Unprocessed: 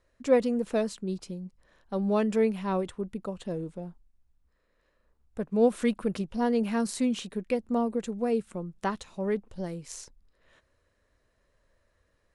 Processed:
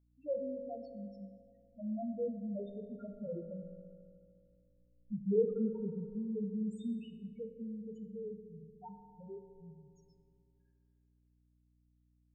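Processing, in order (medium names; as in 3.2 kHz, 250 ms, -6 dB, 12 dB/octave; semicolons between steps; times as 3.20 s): Doppler pass-by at 4.25 s, 26 m/s, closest 18 m; loudest bins only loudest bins 1; hum 60 Hz, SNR 30 dB; on a send: reverberation RT60 2.5 s, pre-delay 3 ms, DRR 5.5 dB; on the sum: trim +4.5 dB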